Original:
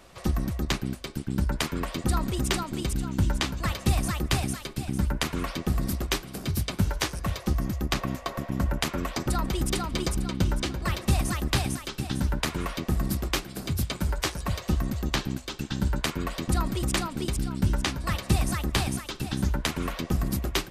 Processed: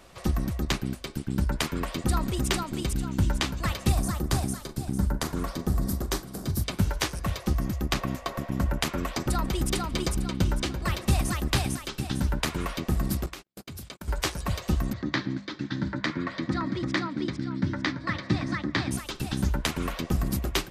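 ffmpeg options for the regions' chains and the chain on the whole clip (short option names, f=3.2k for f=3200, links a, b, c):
-filter_complex "[0:a]asettb=1/sr,asplit=3[a][b][c];[a]atrim=end=3.924[d];[b]atrim=start=3.92:end=6.64,asetpts=PTS-STARTPTS,afade=t=in:d=0.004:c=qsin,afade=t=out:st=2.716:d=0.004:c=qsin,equalizer=f=2.6k:t=o:w=1:g=-11,asplit=2[e][f];[f]adelay=41,volume=-13dB[g];[e][g]amix=inputs=2:normalize=0,atrim=end_sample=119952[h];[c]atrim=start=6.636[i];[d][h]acrossfade=d=0.004:c1=hsin:c2=qsin[j];[j][i]acrossfade=d=0.004:c1=qsin:c2=hsin,asettb=1/sr,asplit=3[k][l][m];[k]atrim=end=13.264[n];[l]atrim=start=13.26:end=14.08,asetpts=PTS-STARTPTS,afade=t=in:d=0.004:c=qsin,afade=t=out:st=0.816:d=0.004:c=qsin,agate=range=-49dB:threshold=-34dB:ratio=16:release=100:detection=peak,lowshelf=f=130:g=-9,acompressor=threshold=-36dB:ratio=10:attack=3.2:release=140:knee=1:detection=peak[o];[m]atrim=start=14.076[p];[n][o]acrossfade=d=0.004:c1=hsin:c2=qsin[q];[q][p]acrossfade=d=0.004:c1=qsin:c2=hsin,asettb=1/sr,asplit=3[r][s][t];[r]atrim=end=14.934[u];[s]atrim=start=14.93:end=18.91,asetpts=PTS-STARTPTS,afade=t=in:d=0.004:c=qsin,afade=t=out:st=3.976:d=0.004:c=qsin,highpass=f=100:w=0.5412,highpass=f=100:w=1.3066,equalizer=f=300:t=q:w=4:g=8,equalizer=f=430:t=q:w=4:g=-7,equalizer=f=760:t=q:w=4:g=-7,equalizer=f=1.9k:t=q:w=4:g=7,equalizer=f=2.8k:t=q:w=4:g=-10,lowpass=f=4.7k:w=0.5412,lowpass=f=4.7k:w=1.3066,bandreject=f=50:t=h:w=6,bandreject=f=100:t=h:w=6,bandreject=f=150:t=h:w=6,bandreject=f=200:t=h:w=6[v];[t]atrim=start=18.906[w];[u][v]acrossfade=d=0.004:c1=hsin:c2=qsin[x];[x][w]acrossfade=d=0.004:c1=qsin:c2=hsin"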